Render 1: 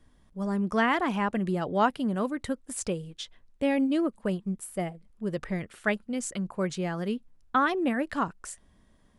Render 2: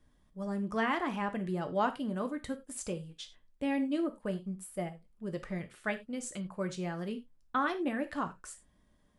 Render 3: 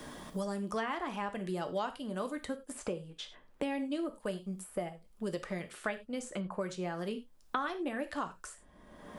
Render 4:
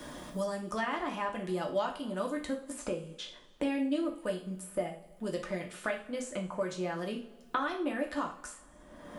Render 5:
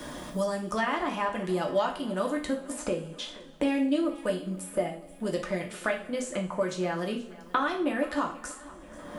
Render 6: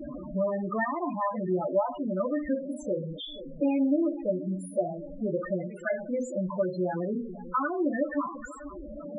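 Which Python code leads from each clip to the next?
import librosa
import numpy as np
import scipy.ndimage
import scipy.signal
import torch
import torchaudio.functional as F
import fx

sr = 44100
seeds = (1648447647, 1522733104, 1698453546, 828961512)

y1 = fx.rev_gated(x, sr, seeds[0], gate_ms=120, shape='falling', drr_db=6.5)
y1 = y1 * librosa.db_to_amplitude(-7.0)
y2 = fx.graphic_eq_10(y1, sr, hz=(125, 250, 2000), db=(-8, -4, -3))
y2 = fx.band_squash(y2, sr, depth_pct=100)
y3 = fx.rev_double_slope(y2, sr, seeds[1], early_s=0.31, late_s=1.6, knee_db=-18, drr_db=2.0)
y4 = fx.echo_feedback(y3, sr, ms=481, feedback_pct=55, wet_db=-19.5)
y4 = y4 * librosa.db_to_amplitude(5.0)
y5 = y4 + 0.5 * 10.0 ** (-34.0 / 20.0) * np.sign(y4)
y5 = fx.spec_topn(y5, sr, count=8)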